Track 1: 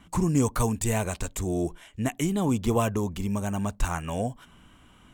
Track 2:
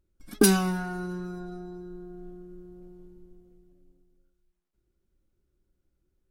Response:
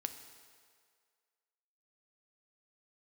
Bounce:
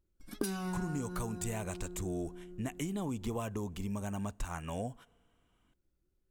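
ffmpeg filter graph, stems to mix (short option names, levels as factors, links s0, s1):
-filter_complex "[0:a]agate=range=0.251:threshold=0.00631:ratio=16:detection=peak,adelay=600,volume=0.398,asplit=2[s0][s1];[s1]volume=0.1[s2];[1:a]volume=0.631[s3];[2:a]atrim=start_sample=2205[s4];[s2][s4]afir=irnorm=-1:irlink=0[s5];[s0][s3][s5]amix=inputs=3:normalize=0,acompressor=threshold=0.0251:ratio=10"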